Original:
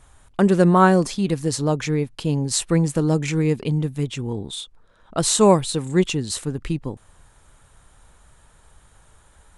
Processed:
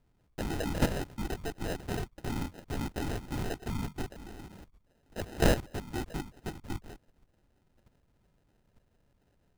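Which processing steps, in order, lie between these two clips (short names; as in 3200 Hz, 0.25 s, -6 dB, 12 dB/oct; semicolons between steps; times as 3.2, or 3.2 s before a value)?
level quantiser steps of 12 dB; LPC vocoder at 8 kHz whisper; sample-and-hold 39×; gain -9 dB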